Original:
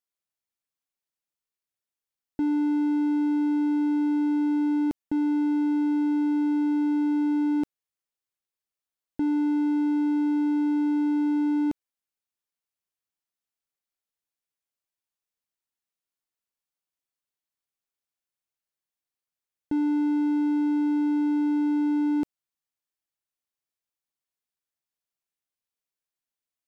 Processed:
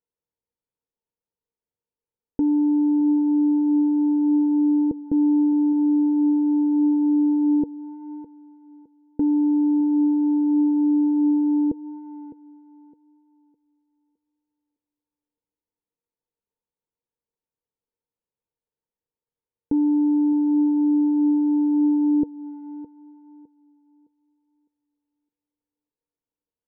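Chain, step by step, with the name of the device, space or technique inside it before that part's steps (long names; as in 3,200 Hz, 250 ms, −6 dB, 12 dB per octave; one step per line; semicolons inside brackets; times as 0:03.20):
tilt shelving filter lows +9.5 dB, about 740 Hz
tape delay 610 ms, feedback 30%, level −15 dB, low-pass 2,000 Hz
treble cut that deepens with the level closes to 620 Hz, closed at −22 dBFS
inside a cardboard box (low-pass filter 2,900 Hz; hollow resonant body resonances 470/910 Hz, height 14 dB, ringing for 55 ms)
level −2.5 dB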